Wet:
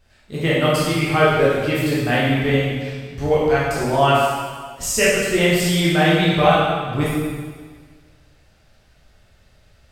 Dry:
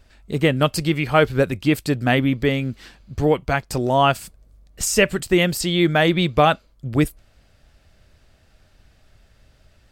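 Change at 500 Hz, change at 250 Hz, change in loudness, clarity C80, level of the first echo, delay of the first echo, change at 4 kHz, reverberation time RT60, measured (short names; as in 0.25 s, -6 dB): +2.5 dB, +0.5 dB, +1.5 dB, 1.0 dB, none, none, +2.0 dB, 1.6 s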